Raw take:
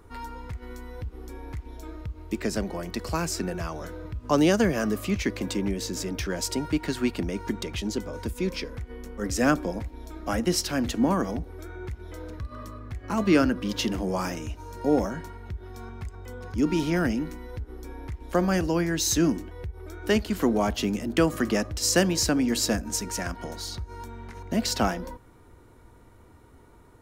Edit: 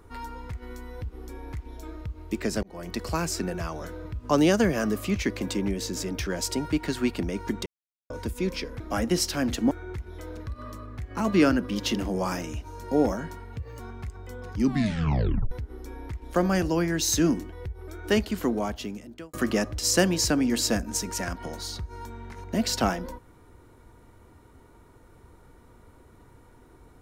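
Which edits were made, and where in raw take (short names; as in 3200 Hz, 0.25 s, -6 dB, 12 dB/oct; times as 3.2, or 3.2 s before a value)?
2.63–2.92 fade in
7.66–8.1 mute
8.8–10.16 cut
11.07–11.64 cut
15.49–15.78 speed 124%
16.54 tape stop 0.96 s
20.13–21.32 fade out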